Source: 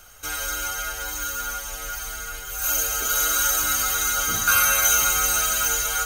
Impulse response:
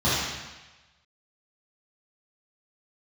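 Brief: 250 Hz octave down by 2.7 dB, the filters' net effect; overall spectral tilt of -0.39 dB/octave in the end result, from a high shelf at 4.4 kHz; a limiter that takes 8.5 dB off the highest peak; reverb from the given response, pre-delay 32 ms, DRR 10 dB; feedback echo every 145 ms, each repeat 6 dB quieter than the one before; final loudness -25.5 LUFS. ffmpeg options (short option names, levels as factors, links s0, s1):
-filter_complex "[0:a]equalizer=f=250:t=o:g=-3.5,highshelf=f=4400:g=-3,alimiter=limit=0.15:level=0:latency=1,aecho=1:1:145|290|435|580|725|870:0.501|0.251|0.125|0.0626|0.0313|0.0157,asplit=2[s0][s1];[1:a]atrim=start_sample=2205,adelay=32[s2];[s1][s2]afir=irnorm=-1:irlink=0,volume=0.0447[s3];[s0][s3]amix=inputs=2:normalize=0,volume=0.891"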